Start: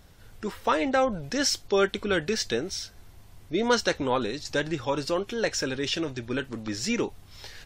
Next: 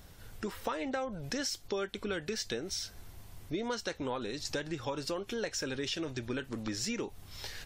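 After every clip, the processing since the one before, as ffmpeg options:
-af "highshelf=f=9.2k:g=6,acompressor=threshold=-33dB:ratio=6"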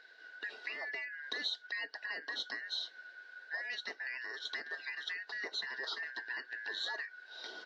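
-af "afftfilt=real='real(if(lt(b,272),68*(eq(floor(b/68),0)*1+eq(floor(b/68),1)*0+eq(floor(b/68),2)*3+eq(floor(b/68),3)*2)+mod(b,68),b),0)':imag='imag(if(lt(b,272),68*(eq(floor(b/68),0)*1+eq(floor(b/68),1)*0+eq(floor(b/68),2)*3+eq(floor(b/68),3)*2)+mod(b,68),b),0)':win_size=2048:overlap=0.75,highpass=f=330:w=0.5412,highpass=f=330:w=1.3066,equalizer=f=430:t=q:w=4:g=4,equalizer=f=690:t=q:w=4:g=4,equalizer=f=1.3k:t=q:w=4:g=-4,equalizer=f=2.4k:t=q:w=4:g=-8,equalizer=f=4k:t=q:w=4:g=7,lowpass=f=4.4k:w=0.5412,lowpass=f=4.4k:w=1.3066,volume=-3.5dB"

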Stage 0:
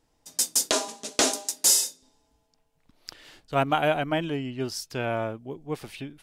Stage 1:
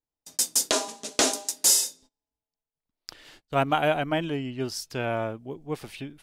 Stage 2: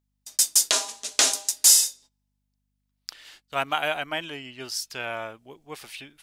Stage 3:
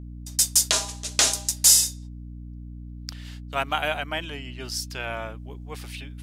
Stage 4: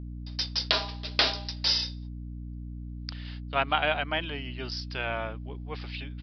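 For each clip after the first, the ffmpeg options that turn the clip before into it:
-af "agate=range=-25dB:threshold=-51dB:ratio=16:detection=peak"
-af "aeval=exprs='val(0)+0.000794*(sin(2*PI*50*n/s)+sin(2*PI*2*50*n/s)/2+sin(2*PI*3*50*n/s)/3+sin(2*PI*4*50*n/s)/4+sin(2*PI*5*50*n/s)/5)':c=same,tiltshelf=f=660:g=-9.5,volume=-5dB"
-af "aeval=exprs='val(0)+0.0141*(sin(2*PI*60*n/s)+sin(2*PI*2*60*n/s)/2+sin(2*PI*3*60*n/s)/3+sin(2*PI*4*60*n/s)/4+sin(2*PI*5*60*n/s)/5)':c=same"
-af "aresample=11025,aresample=44100"

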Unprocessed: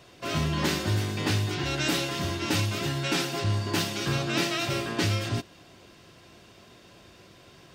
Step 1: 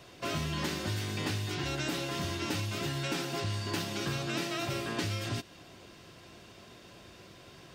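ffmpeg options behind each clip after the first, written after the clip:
-filter_complex "[0:a]acrossover=split=1500|6800[a][b][c];[a]acompressor=threshold=-33dB:ratio=4[d];[b]acompressor=threshold=-39dB:ratio=4[e];[c]acompressor=threshold=-49dB:ratio=4[f];[d][e][f]amix=inputs=3:normalize=0"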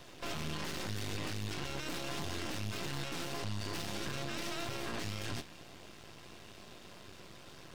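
-af "flanger=delay=9.6:depth=9.5:regen=78:speed=1.7:shape=sinusoidal,aeval=exprs='max(val(0),0)':c=same,alimiter=level_in=11.5dB:limit=-24dB:level=0:latency=1:release=21,volume=-11.5dB,volume=8dB"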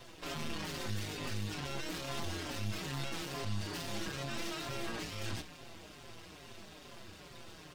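-filter_complex "[0:a]areverse,acompressor=mode=upward:threshold=-44dB:ratio=2.5,areverse,asplit=2[a][b];[b]adelay=5.4,afreqshift=-2.3[c];[a][c]amix=inputs=2:normalize=1,volume=2.5dB"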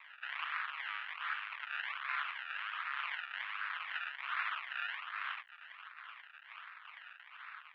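-af "acrusher=samples=28:mix=1:aa=0.000001:lfo=1:lforange=28:lforate=1.3,aeval=exprs='max(val(0),0)':c=same,asuperpass=centerf=1900:order=8:qfactor=1,volume=12.5dB"

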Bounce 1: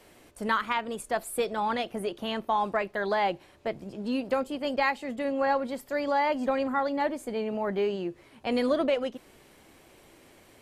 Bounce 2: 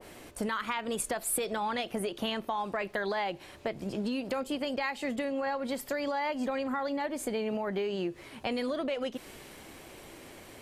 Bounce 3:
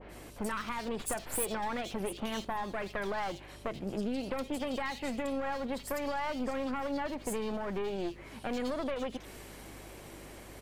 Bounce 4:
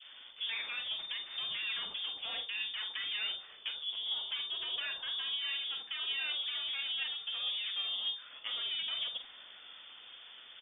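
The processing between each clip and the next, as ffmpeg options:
-af "alimiter=level_in=2dB:limit=-24dB:level=0:latency=1:release=235,volume=-2dB,acompressor=threshold=-36dB:ratio=6,adynamicequalizer=threshold=0.00251:dfrequency=1600:dqfactor=0.7:tfrequency=1600:tqfactor=0.7:attack=5:release=100:ratio=0.375:range=2:mode=boostabove:tftype=highshelf,volume=6.5dB"
-filter_complex "[0:a]aeval=exprs='clip(val(0),-1,0.0119)':c=same,aeval=exprs='val(0)+0.00224*(sin(2*PI*50*n/s)+sin(2*PI*2*50*n/s)/2+sin(2*PI*3*50*n/s)/3+sin(2*PI*4*50*n/s)/4+sin(2*PI*5*50*n/s)/5)':c=same,acrossover=split=3100[a][b];[b]adelay=80[c];[a][c]amix=inputs=2:normalize=0"
-filter_complex "[0:a]flanger=delay=2.7:depth=8.3:regen=51:speed=0.99:shape=triangular,asplit=2[a][b];[b]adelay=46,volume=-9dB[c];[a][c]amix=inputs=2:normalize=0,lowpass=f=3.1k:t=q:w=0.5098,lowpass=f=3.1k:t=q:w=0.6013,lowpass=f=3.1k:t=q:w=0.9,lowpass=f=3.1k:t=q:w=2.563,afreqshift=-3600"

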